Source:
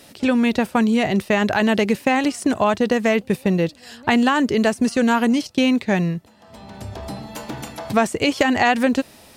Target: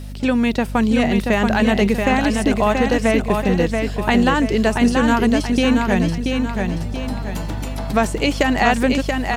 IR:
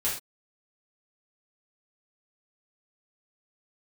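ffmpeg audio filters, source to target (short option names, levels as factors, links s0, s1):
-af "aeval=exprs='val(0)+0.0316*(sin(2*PI*50*n/s)+sin(2*PI*2*50*n/s)/2+sin(2*PI*3*50*n/s)/3+sin(2*PI*4*50*n/s)/4+sin(2*PI*5*50*n/s)/5)':c=same,aecho=1:1:681|1362|2043|2724|3405:0.596|0.25|0.105|0.0441|0.0185,acrusher=bits=9:mix=0:aa=0.000001"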